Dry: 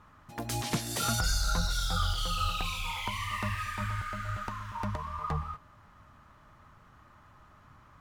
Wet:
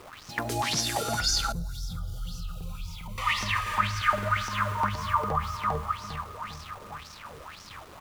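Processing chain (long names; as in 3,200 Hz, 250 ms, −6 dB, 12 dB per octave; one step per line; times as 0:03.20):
bit reduction 9 bits
on a send: repeating echo 401 ms, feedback 56%, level −6.5 dB
on the sum: brickwall limiter −28 dBFS, peak gain reduction 11 dB
0:01.52–0:03.18: drawn EQ curve 110 Hz 0 dB, 160 Hz +5 dB, 280 Hz −11 dB, 1,900 Hz −25 dB, 9,800 Hz −11 dB, 14,000 Hz −4 dB
auto-filter bell 1.9 Hz 420–5,800 Hz +17 dB
level +4 dB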